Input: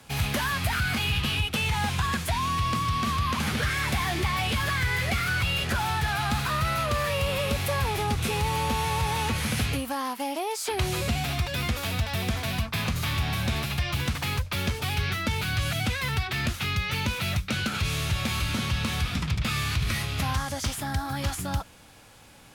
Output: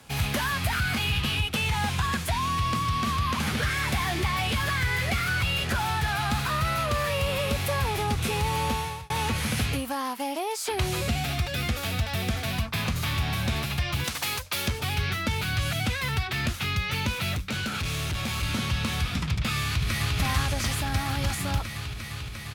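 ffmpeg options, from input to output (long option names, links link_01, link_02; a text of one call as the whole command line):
ffmpeg -i in.wav -filter_complex "[0:a]asettb=1/sr,asplit=3[link_01][link_02][link_03];[link_01]atrim=end=11.084[link_04];[link_02]atrim=start=11.08:end=12.47,asetpts=PTS-STARTPTS,afade=type=in:duration=0.004:curve=qsin,afade=type=out:start_time=1.386:duration=0.004:curve=qsin,asuperstop=centerf=1000:order=4:qfactor=7.2[link_05];[link_03]atrim=start=12.466[link_06];[link_04][link_05]acrossfade=duration=0.004:curve1=hsin:curve2=qsin[link_07];[link_07][link_06]acrossfade=duration=0.004:curve1=qsin:curve2=hsin,asettb=1/sr,asplit=3[link_08][link_09][link_10];[link_08]atrim=end=14.044[link_11];[link_09]atrim=start=14.04:end=14.68,asetpts=PTS-STARTPTS,afade=type=in:duration=0.004:curve=qsin,afade=type=out:start_time=0.636:duration=0.004:curve=qsin,bass=frequency=250:gain=-12,treble=frequency=4000:gain=7[link_12];[link_10]atrim=start=14.676[link_13];[link_11][link_12]acrossfade=duration=0.004:curve1=hsin:curve2=qsin[link_14];[link_14][link_13]acrossfade=duration=0.004:curve1=qsin:curve2=hsin,asettb=1/sr,asplit=3[link_15][link_16][link_17];[link_15]atrim=end=17.354[link_18];[link_16]atrim=start=17.35:end=18.43,asetpts=PTS-STARTPTS,afade=type=in:duration=0.004:curve=qsin,afade=type=out:start_time=1.076:duration=0.004:curve=qsin,asoftclip=type=hard:threshold=-26dB[link_19];[link_17]atrim=start=18.426[link_20];[link_18][link_19]acrossfade=duration=0.004:curve1=hsin:curve2=qsin[link_21];[link_21][link_20]acrossfade=duration=0.004:curve1=qsin:curve2=hsin,asplit=2[link_22][link_23];[link_23]afade=type=in:start_time=19.65:duration=0.01,afade=type=out:start_time=20.18:duration=0.01,aecho=0:1:350|700|1050|1400|1750|2100|2450|2800|3150|3500|3850|4200:0.794328|0.675179|0.573902|0.487817|0.414644|0.352448|0.299581|0.254643|0.216447|0.18398|0.156383|0.132925[link_24];[link_22][link_24]amix=inputs=2:normalize=0,asplit=2[link_25][link_26];[link_25]atrim=end=9.1,asetpts=PTS-STARTPTS,afade=type=out:start_time=8.7:duration=0.4[link_27];[link_26]atrim=start=9.1,asetpts=PTS-STARTPTS,afade=type=in:duration=0.004:curve=hsin[link_28];[link_27][link_28]concat=n=2:v=0:a=1" out.wav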